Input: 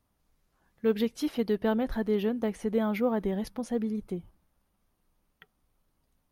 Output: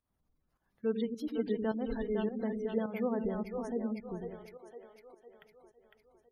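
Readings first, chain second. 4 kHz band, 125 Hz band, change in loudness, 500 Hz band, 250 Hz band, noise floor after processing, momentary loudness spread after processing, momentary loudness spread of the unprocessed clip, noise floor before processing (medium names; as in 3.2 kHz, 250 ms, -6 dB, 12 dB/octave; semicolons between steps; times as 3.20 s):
-10.0 dB, -5.5 dB, -5.5 dB, -5.0 dB, -5.5 dB, -80 dBFS, 15 LU, 6 LU, -76 dBFS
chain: two-band feedback delay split 390 Hz, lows 95 ms, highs 505 ms, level -4 dB; volume shaper 105 bpm, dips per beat 1, -12 dB, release 213 ms; spectral gate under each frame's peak -30 dB strong; trim -6.5 dB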